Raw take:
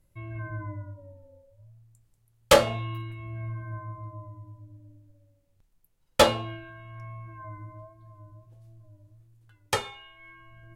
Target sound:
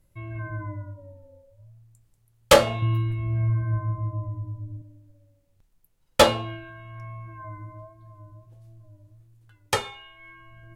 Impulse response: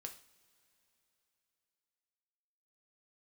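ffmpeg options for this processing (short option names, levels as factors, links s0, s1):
-filter_complex "[0:a]asettb=1/sr,asplit=3[s0][s1][s2];[s0]atrim=end=2.824[s3];[s1]atrim=start=2.82:end=4.82,asetpts=PTS-STARTPTS,afade=t=in:d=0.004:c=qsin,afade=t=out:st=1.996:d=0.004:c=qsin,lowshelf=f=350:g=10.5[s4];[s2]atrim=start=4.816[s5];[s3][s4]acrossfade=d=0.004:c1=hsin:c2=qsin[s6];[s6][s5]acrossfade=d=0.004:c1=qsin:c2=hsin,volume=1.33"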